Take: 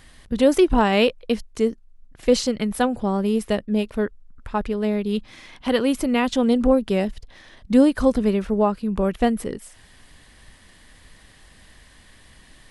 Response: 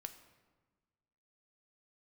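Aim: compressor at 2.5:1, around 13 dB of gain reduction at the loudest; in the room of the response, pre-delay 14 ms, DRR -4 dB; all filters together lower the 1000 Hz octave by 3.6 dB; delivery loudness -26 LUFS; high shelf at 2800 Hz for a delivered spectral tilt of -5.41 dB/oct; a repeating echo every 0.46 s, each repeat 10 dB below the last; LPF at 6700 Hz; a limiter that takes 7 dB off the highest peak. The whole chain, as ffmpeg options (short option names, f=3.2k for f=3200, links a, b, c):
-filter_complex "[0:a]lowpass=6.7k,equalizer=f=1k:t=o:g=-5.5,highshelf=f=2.8k:g=5,acompressor=threshold=-32dB:ratio=2.5,alimiter=limit=-22.5dB:level=0:latency=1,aecho=1:1:460|920|1380|1840:0.316|0.101|0.0324|0.0104,asplit=2[a][b];[1:a]atrim=start_sample=2205,adelay=14[c];[b][c]afir=irnorm=-1:irlink=0,volume=8.5dB[d];[a][d]amix=inputs=2:normalize=0,volume=1.5dB"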